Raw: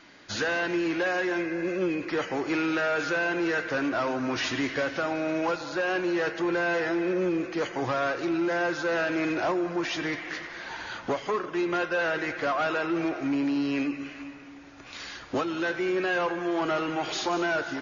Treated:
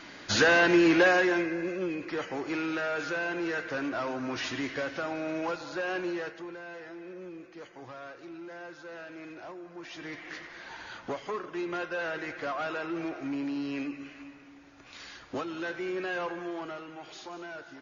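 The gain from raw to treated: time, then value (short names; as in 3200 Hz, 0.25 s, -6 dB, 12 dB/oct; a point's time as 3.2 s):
1.03 s +6 dB
1.77 s -5 dB
6.07 s -5 dB
6.58 s -17 dB
9.69 s -17 dB
10.3 s -6.5 dB
16.4 s -6.5 dB
16.85 s -15 dB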